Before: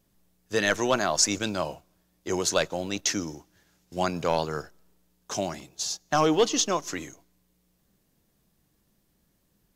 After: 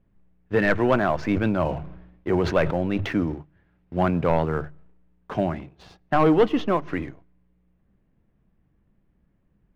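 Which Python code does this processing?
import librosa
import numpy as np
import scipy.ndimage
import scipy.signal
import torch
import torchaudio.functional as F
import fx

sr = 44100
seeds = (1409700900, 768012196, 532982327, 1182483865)

y = scipy.signal.sosfilt(scipy.signal.butter(4, 2400.0, 'lowpass', fs=sr, output='sos'), x)
y = fx.low_shelf(y, sr, hz=200.0, db=11.5)
y = fx.hum_notches(y, sr, base_hz=50, count=3)
y = fx.leveller(y, sr, passes=1)
y = fx.sustainer(y, sr, db_per_s=63.0, at=(1.3, 3.34))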